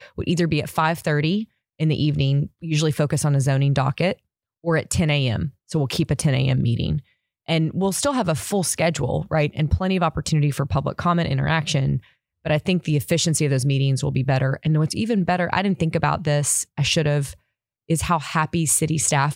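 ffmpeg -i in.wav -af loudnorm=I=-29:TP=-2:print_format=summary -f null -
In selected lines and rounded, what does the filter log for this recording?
Input Integrated:    -21.4 LUFS
Input True Peak:      -4.1 dBTP
Input LRA:             1.3 LU
Input Threshold:     -31.6 LUFS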